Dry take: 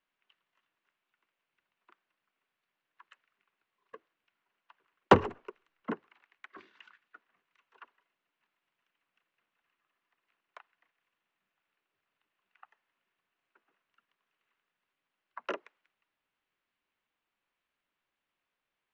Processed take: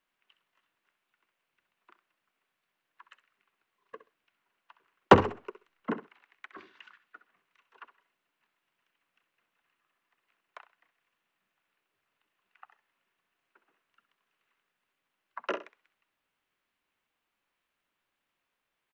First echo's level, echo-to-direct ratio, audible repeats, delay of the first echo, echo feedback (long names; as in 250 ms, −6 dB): −13.0 dB, −13.0 dB, 2, 65 ms, 17%